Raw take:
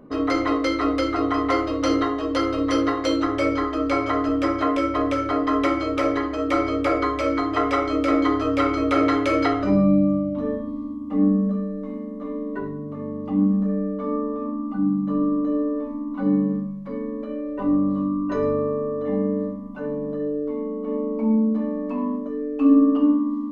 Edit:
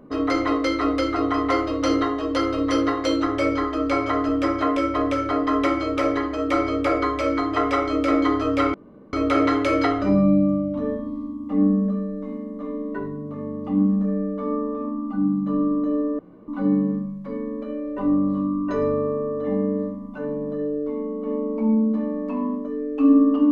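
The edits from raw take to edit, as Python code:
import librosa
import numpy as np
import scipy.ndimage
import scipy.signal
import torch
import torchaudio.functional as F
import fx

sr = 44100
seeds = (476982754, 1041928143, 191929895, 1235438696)

y = fx.edit(x, sr, fx.insert_room_tone(at_s=8.74, length_s=0.39),
    fx.room_tone_fill(start_s=15.8, length_s=0.29), tone=tone)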